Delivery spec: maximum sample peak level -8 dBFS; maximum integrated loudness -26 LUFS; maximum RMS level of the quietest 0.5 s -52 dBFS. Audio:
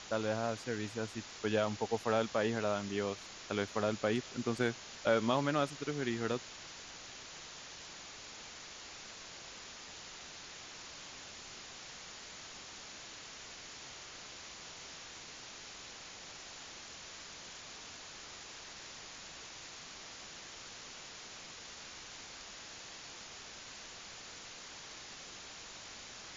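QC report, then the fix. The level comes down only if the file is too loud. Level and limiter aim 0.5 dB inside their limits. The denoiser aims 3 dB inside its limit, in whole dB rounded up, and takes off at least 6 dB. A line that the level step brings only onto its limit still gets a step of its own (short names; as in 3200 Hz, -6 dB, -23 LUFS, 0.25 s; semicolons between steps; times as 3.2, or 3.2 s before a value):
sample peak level -17.0 dBFS: OK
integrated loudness -40.5 LUFS: OK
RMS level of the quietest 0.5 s -50 dBFS: fail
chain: denoiser 6 dB, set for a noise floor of -50 dBFS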